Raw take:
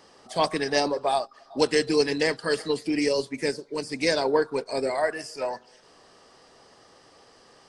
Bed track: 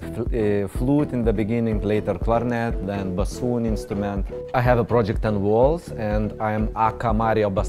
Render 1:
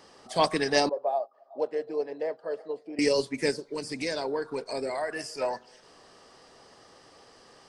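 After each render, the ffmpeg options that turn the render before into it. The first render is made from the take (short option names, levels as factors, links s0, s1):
-filter_complex "[0:a]asettb=1/sr,asplit=3[s0][s1][s2];[s0]atrim=end=0.894[s3];[s1]atrim=start=0.89:end=2.99,asetpts=PTS-STARTPTS,afade=t=in:d=0.004:c=qsin,afade=t=out:st=2.096:d=0.004:c=qsin,bandpass=f=610:t=q:w=3.3[s4];[s2]atrim=start=2.986[s5];[s3][s4]acrossfade=d=0.004:c1=hsin:c2=qsin[s6];[s6][s5]acrossfade=d=0.004:c1=qsin:c2=hsin,asettb=1/sr,asplit=3[s7][s8][s9];[s7]atrim=end=3.634[s10];[s8]atrim=start=3.63:end=5.16,asetpts=PTS-STARTPTS,afade=t=in:d=0.004:c=qsin,afade=t=out:st=1.526:d=0.004:c=qsin,acompressor=threshold=0.0316:ratio=2.5:attack=3.2:release=140:knee=1:detection=peak[s11];[s9]atrim=start=5.156[s12];[s10][s11]acrossfade=d=0.004:c1=hsin:c2=qsin[s13];[s13][s12]acrossfade=d=0.004:c1=qsin:c2=hsin"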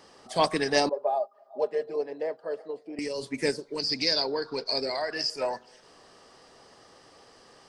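-filter_complex "[0:a]asettb=1/sr,asplit=3[s0][s1][s2];[s0]atrim=end=0.924[s3];[s1]atrim=start=0.92:end=1.96,asetpts=PTS-STARTPTS,afade=t=in:d=0.004:c=qsin,afade=t=out:st=1.036:d=0.004:c=qsin,aecho=1:1:4.9:0.65,atrim=end_sample=45864[s4];[s2]atrim=start=1.956[s5];[s3][s4]acrossfade=d=0.004:c1=hsin:c2=qsin[s6];[s6][s5]acrossfade=d=0.004:c1=qsin:c2=hsin,asplit=3[s7][s8][s9];[s7]afade=t=out:st=2.63:d=0.02[s10];[s8]acompressor=threshold=0.0355:ratio=6:attack=3.2:release=140:knee=1:detection=peak,afade=t=in:st=2.63:d=0.02,afade=t=out:st=3.21:d=0.02[s11];[s9]afade=t=in:st=3.21:d=0.02[s12];[s10][s11][s12]amix=inputs=3:normalize=0,asettb=1/sr,asplit=3[s13][s14][s15];[s13]atrim=end=3.794[s16];[s14]atrim=start=3.79:end=5.3,asetpts=PTS-STARTPTS,afade=t=in:d=0.004:c=qsin,afade=t=out:st=1.506:d=0.004:c=qsin,lowpass=f=4800:t=q:w=6.6[s17];[s15]atrim=start=5.296[s18];[s16][s17]acrossfade=d=0.004:c1=hsin:c2=qsin[s19];[s19][s18]acrossfade=d=0.004:c1=qsin:c2=hsin"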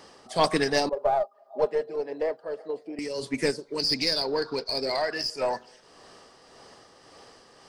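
-filter_complex "[0:a]asplit=2[s0][s1];[s1]aeval=exprs='clip(val(0),-1,0.0316)':c=same,volume=0.631[s2];[s0][s2]amix=inputs=2:normalize=0,tremolo=f=1.8:d=0.42"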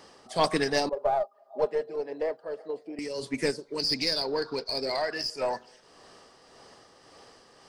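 -af "volume=0.794"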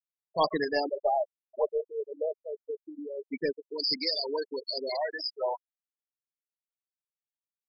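-af "afftfilt=real='re*gte(hypot(re,im),0.0891)':imag='im*gte(hypot(re,im),0.0891)':win_size=1024:overlap=0.75,lowshelf=f=180:g=-11"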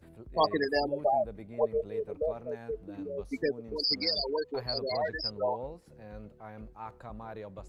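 -filter_complex "[1:a]volume=0.0708[s0];[0:a][s0]amix=inputs=2:normalize=0"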